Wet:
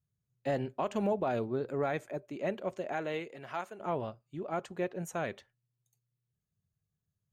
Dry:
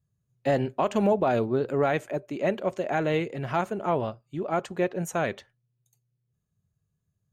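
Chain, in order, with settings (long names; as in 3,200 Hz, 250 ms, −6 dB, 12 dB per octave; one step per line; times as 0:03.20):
0:01.56–0:02.27: notch filter 2,900 Hz, Q 8.8
0:02.92–0:03.79: high-pass filter 270 Hz → 970 Hz 6 dB per octave
level −8 dB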